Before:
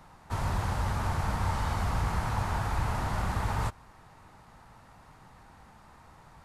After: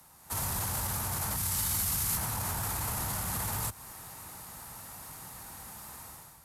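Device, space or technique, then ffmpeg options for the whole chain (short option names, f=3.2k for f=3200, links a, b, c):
FM broadcast chain: -filter_complex "[0:a]asettb=1/sr,asplit=3[a][b][c];[a]atrim=end=1.364[d];[b]atrim=start=1.36:end=2.17,asetpts=PTS-STARTPTS,afade=t=in:d=0.004:c=qsin,afade=t=out:st=0.806:d=0.004:c=qsin,equalizer=f=730:w=0.47:g=-11[e];[c]atrim=start=2.166[f];[d][e]acrossfade=d=0.004:c1=hsin:c2=qsin[g];[g][f]acrossfade=d=0.004:c1=qsin:c2=hsin,highpass=46,dynaudnorm=f=110:g=7:m=12dB,acrossover=split=100|200|510[h][i][j][k];[h]acompressor=threshold=-33dB:ratio=4[l];[i]acompressor=threshold=-29dB:ratio=4[m];[j]acompressor=threshold=-40dB:ratio=4[n];[k]acompressor=threshold=-30dB:ratio=4[o];[l][m][n][o]amix=inputs=4:normalize=0,aemphasis=mode=production:type=50fm,alimiter=limit=-20dB:level=0:latency=1:release=13,asoftclip=type=hard:threshold=-22.5dB,lowpass=f=15k:w=0.5412,lowpass=f=15k:w=1.3066,aemphasis=mode=production:type=50fm,volume=-7.5dB"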